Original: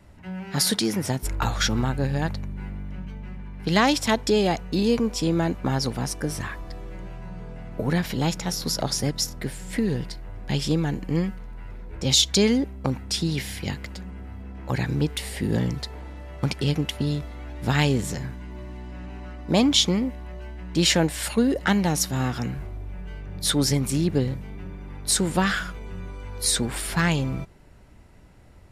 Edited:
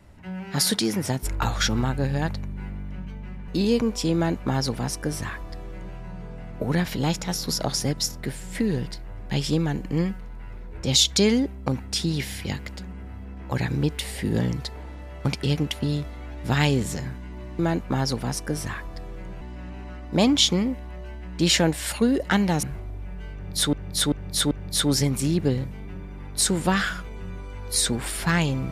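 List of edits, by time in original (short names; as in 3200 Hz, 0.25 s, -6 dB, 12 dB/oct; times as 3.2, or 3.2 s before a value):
3.48–4.66 cut
5.33–7.15 copy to 18.77
21.99–22.5 cut
23.21–23.6 loop, 4 plays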